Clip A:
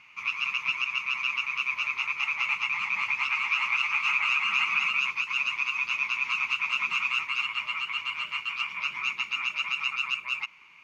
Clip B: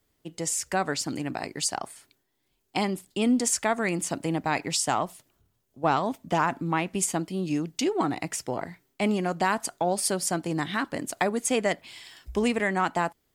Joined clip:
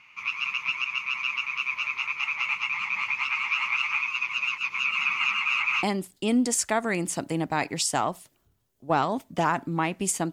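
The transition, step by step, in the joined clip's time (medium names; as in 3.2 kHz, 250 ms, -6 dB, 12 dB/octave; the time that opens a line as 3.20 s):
clip A
4.02–5.83 s: reverse
5.83 s: go over to clip B from 2.77 s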